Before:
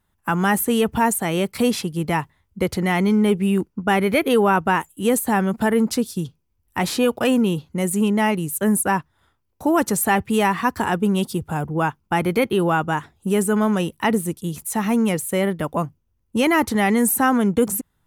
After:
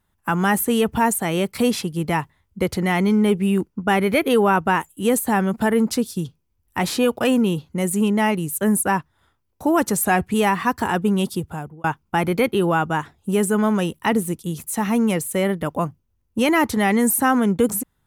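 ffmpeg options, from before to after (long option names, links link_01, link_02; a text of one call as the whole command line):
ffmpeg -i in.wav -filter_complex "[0:a]asplit=4[link_01][link_02][link_03][link_04];[link_01]atrim=end=10.054[link_05];[link_02]atrim=start=10.05:end=10.32,asetpts=PTS-STARTPTS,asetrate=41013,aresample=44100,atrim=end_sample=12803,asetpts=PTS-STARTPTS[link_06];[link_03]atrim=start=10.316:end=11.82,asetpts=PTS-STARTPTS,afade=type=out:start_time=1.014:duration=0.49[link_07];[link_04]atrim=start=11.82,asetpts=PTS-STARTPTS,afade=type=in:duration=0.004:curve=hsin[link_08];[link_05][link_06]acrossfade=duration=0.004:curve1=hsin:curve2=hsin[link_09];[link_07][link_08]concat=n=2:v=0:a=1[link_10];[link_09][link_10]acrossfade=duration=0.004:curve1=hsin:curve2=hsin" out.wav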